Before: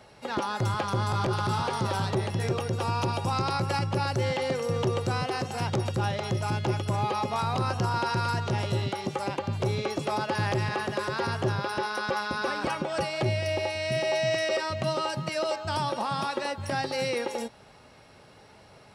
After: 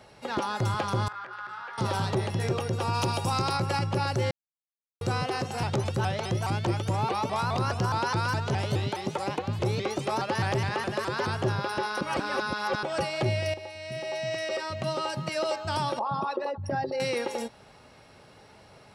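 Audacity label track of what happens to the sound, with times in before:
1.080000	1.780000	band-pass 1600 Hz, Q 3.5
2.930000	3.560000	high shelf 4200 Hz -> 7800 Hz +9.5 dB
4.310000	5.010000	mute
5.630000	11.370000	shaped vibrato saw up 4.8 Hz, depth 160 cents
12.010000	12.830000	reverse
13.540000	15.410000	fade in, from -12.5 dB
15.990000	17.000000	formant sharpening exponent 2

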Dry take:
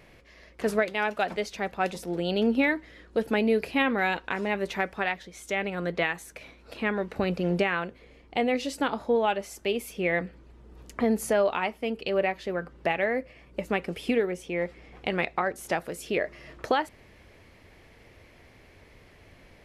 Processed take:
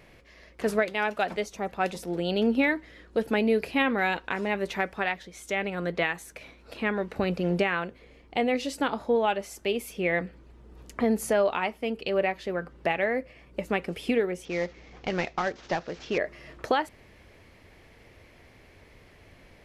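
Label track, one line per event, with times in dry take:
1.450000	1.690000	spectral gain 1400–5400 Hz -8 dB
14.450000	16.180000	CVSD 32 kbps

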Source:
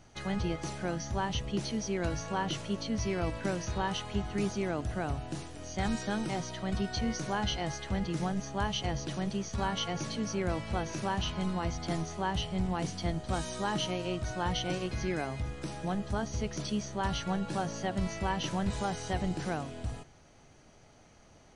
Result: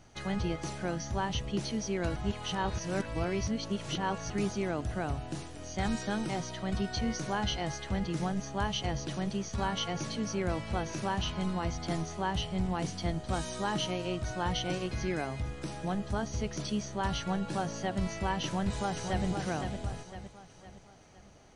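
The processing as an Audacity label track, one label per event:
2.160000	4.300000	reverse
18.450000	19.250000	echo throw 0.51 s, feedback 45%, level -6 dB

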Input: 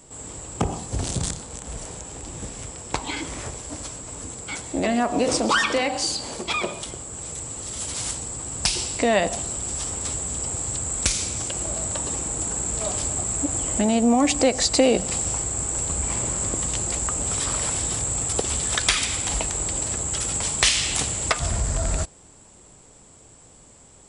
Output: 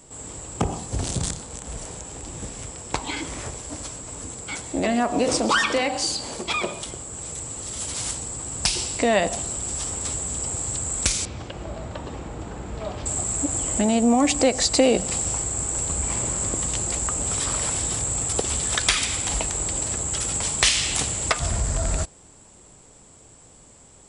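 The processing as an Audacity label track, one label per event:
11.250000	13.060000	air absorption 260 m

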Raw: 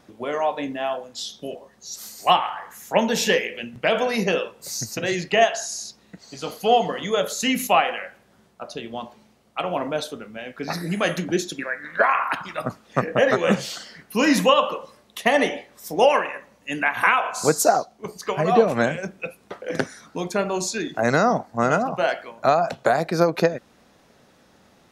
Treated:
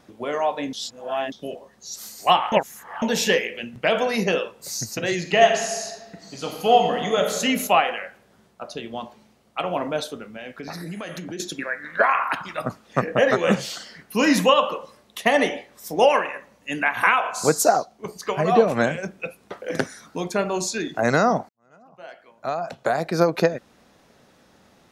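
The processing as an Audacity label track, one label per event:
0.730000	1.320000	reverse
2.520000	3.020000	reverse
5.180000	7.330000	reverb throw, RT60 1.4 s, DRR 4 dB
10.290000	11.400000	compressor, threshold -30 dBFS
19.570000	20.190000	high shelf 11000 Hz +7.5 dB
21.490000	23.190000	fade in quadratic

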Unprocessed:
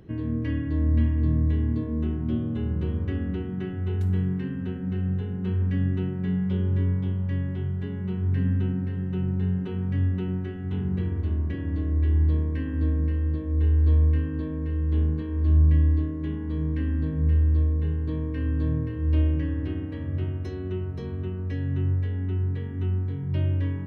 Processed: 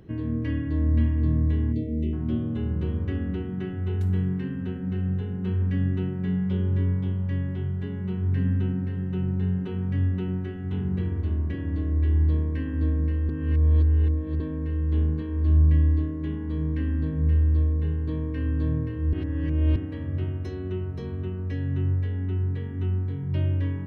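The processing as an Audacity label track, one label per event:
1.720000	2.130000	spectral delete 660–1900 Hz
13.290000	14.400000	reverse
19.130000	19.760000	reverse

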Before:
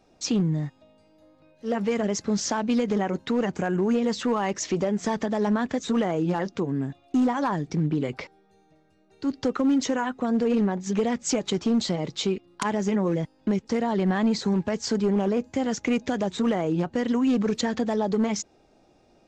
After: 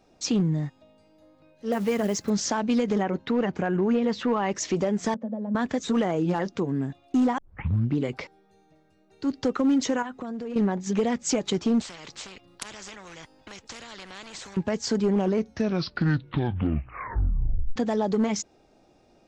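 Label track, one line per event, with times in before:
1.720000	2.300000	companded quantiser 6-bit
3.030000	4.510000	LPF 3900 Hz
5.140000	5.550000	double band-pass 350 Hz, apart 1.2 oct
7.380000	7.380000	tape start 0.60 s
10.020000	10.560000	compressor 12:1, threshold -30 dBFS
11.810000	14.570000	spectral compressor 4:1
15.170000	15.170000	tape stop 2.59 s

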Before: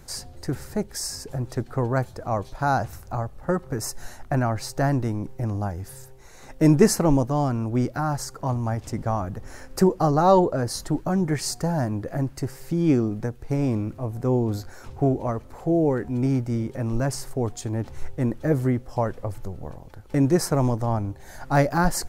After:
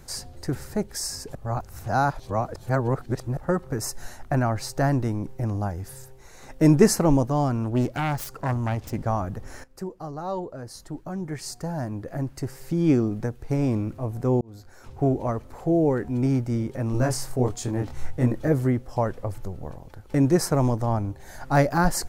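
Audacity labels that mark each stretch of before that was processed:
1.350000	3.370000	reverse
7.640000	9.060000	self-modulated delay depth 0.22 ms
9.640000	12.860000	fade in quadratic, from -15.5 dB
14.410000	15.140000	fade in
16.920000	18.480000	doubler 24 ms -2 dB

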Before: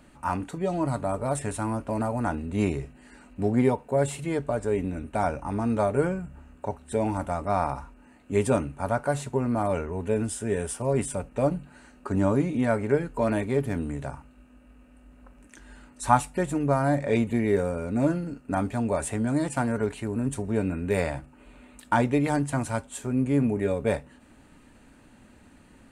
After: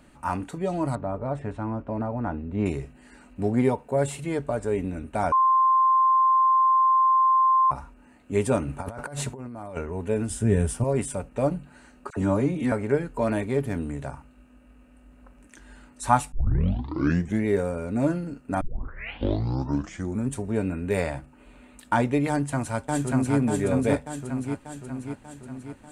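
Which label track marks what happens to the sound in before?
0.950000	2.660000	tape spacing loss at 10 kHz 33 dB
5.320000	7.710000	bleep 1050 Hz -16 dBFS
8.620000	9.770000	negative-ratio compressor -35 dBFS
10.300000	10.840000	tone controls bass +13 dB, treble 0 dB
12.100000	12.720000	dispersion lows, late by 67 ms, half as late at 1200 Hz
16.320000	16.320000	tape start 1.13 s
18.610000	18.610000	tape start 1.70 s
22.290000	23.360000	echo throw 0.59 s, feedback 60%, level -1 dB

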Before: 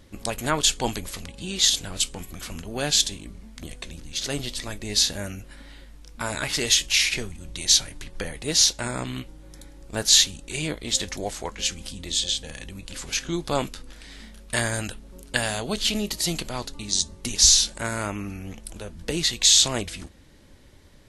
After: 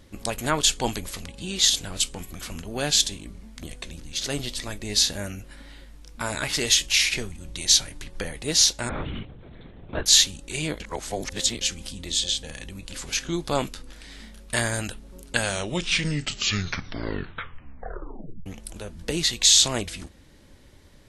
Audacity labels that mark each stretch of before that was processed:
8.890000	10.060000	LPC vocoder at 8 kHz whisper
10.800000	11.610000	reverse
15.250000	15.250000	tape stop 3.21 s

